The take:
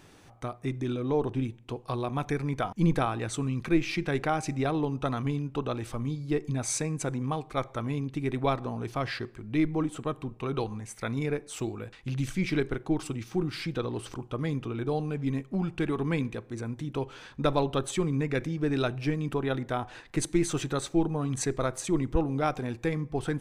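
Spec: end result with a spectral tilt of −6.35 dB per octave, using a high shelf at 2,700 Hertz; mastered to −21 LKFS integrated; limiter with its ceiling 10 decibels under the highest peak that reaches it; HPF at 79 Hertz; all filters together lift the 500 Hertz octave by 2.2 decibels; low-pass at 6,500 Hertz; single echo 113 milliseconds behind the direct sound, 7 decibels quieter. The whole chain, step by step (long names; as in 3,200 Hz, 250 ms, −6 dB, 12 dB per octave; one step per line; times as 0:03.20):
high-pass filter 79 Hz
low-pass filter 6,500 Hz
parametric band 500 Hz +3 dB
high-shelf EQ 2,700 Hz −4.5 dB
brickwall limiter −20.5 dBFS
single-tap delay 113 ms −7 dB
level +10.5 dB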